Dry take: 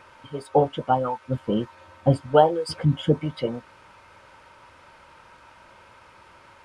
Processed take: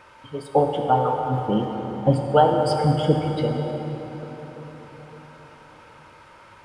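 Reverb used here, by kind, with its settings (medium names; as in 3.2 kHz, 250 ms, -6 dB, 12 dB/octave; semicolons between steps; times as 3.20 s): plate-style reverb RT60 4.8 s, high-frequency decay 0.6×, DRR 2 dB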